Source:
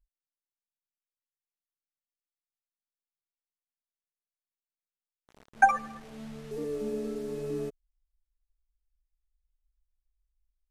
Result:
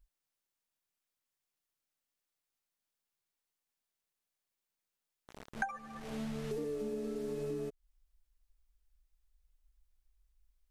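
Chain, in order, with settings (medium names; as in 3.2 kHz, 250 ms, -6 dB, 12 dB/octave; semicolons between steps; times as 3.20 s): compression 8:1, threshold -42 dBFS, peak gain reduction 26.5 dB; trim +6.5 dB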